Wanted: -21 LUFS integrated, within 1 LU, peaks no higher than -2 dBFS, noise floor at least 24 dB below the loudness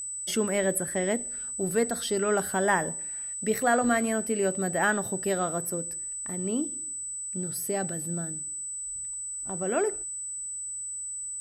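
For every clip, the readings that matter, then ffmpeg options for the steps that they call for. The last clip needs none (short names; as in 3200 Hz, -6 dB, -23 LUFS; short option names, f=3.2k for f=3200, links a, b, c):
steady tone 8000 Hz; tone level -33 dBFS; loudness -28.5 LUFS; peak -11.0 dBFS; loudness target -21.0 LUFS
-> -af "bandreject=f=8k:w=30"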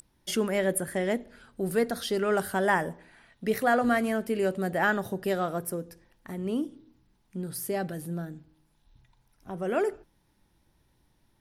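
steady tone none; loudness -29.0 LUFS; peak -11.5 dBFS; loudness target -21.0 LUFS
-> -af "volume=8dB"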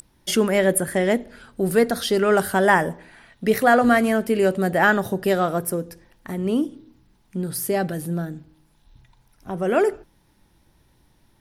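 loudness -21.0 LUFS; peak -3.5 dBFS; noise floor -61 dBFS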